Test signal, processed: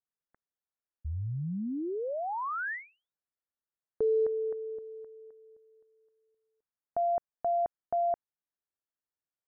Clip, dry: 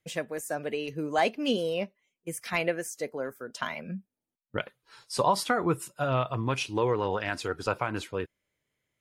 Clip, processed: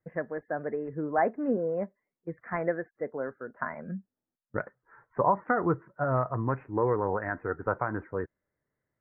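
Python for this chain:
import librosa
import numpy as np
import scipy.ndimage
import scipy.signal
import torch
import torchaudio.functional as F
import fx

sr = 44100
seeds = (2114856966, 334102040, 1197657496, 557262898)

y = scipy.signal.sosfilt(scipy.signal.butter(12, 1900.0, 'lowpass', fs=sr, output='sos'), x)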